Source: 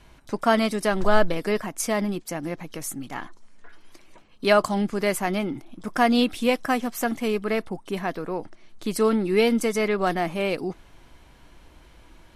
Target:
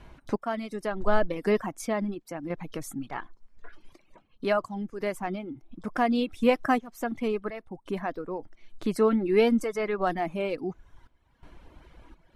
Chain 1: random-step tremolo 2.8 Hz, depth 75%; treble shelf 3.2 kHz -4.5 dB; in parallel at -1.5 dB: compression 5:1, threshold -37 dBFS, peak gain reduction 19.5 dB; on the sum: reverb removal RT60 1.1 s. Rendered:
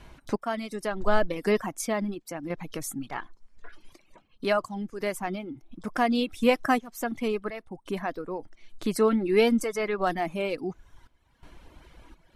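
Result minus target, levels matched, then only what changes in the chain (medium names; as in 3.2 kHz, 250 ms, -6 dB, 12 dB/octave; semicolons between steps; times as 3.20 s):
8 kHz band +6.0 dB
change: treble shelf 3.2 kHz -12.5 dB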